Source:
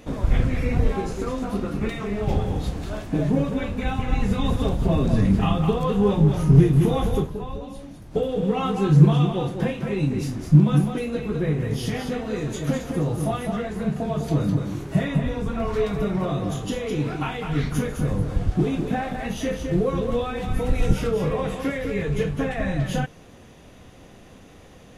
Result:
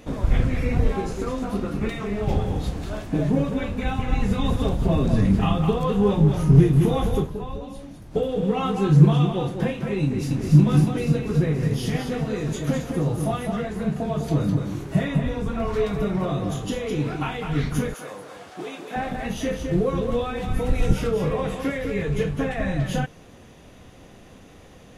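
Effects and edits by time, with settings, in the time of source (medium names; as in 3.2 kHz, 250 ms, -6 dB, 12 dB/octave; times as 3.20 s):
10.02–10.56 s: echo throw 280 ms, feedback 80%, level -3.5 dB
17.94–18.96 s: high-pass 620 Hz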